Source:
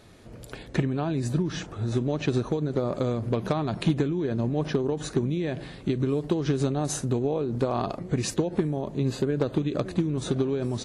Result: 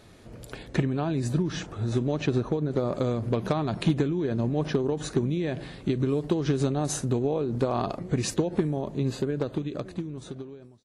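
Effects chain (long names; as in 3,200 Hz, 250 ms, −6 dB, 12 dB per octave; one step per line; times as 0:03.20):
fade-out on the ending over 2.06 s
0:02.27–0:02.71: high-shelf EQ 4,100 Hz −9.5 dB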